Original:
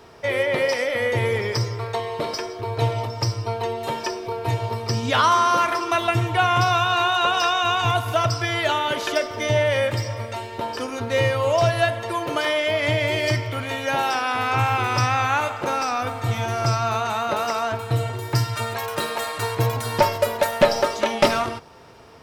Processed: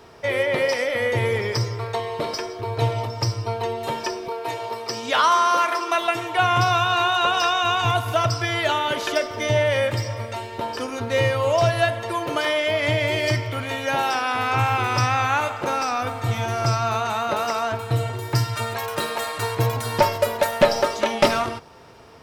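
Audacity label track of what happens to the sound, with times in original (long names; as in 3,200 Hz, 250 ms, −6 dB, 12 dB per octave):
4.280000	6.390000	high-pass filter 360 Hz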